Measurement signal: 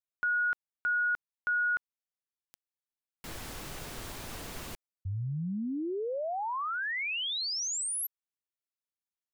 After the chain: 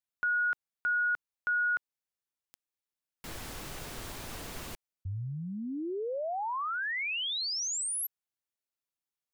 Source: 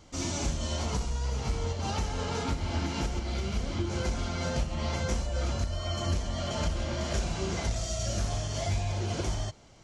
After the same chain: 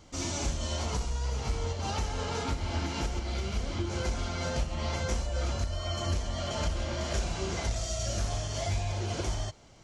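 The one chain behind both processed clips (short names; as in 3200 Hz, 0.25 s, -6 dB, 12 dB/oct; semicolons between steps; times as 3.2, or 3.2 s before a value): dynamic EQ 180 Hz, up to -4 dB, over -46 dBFS, Q 1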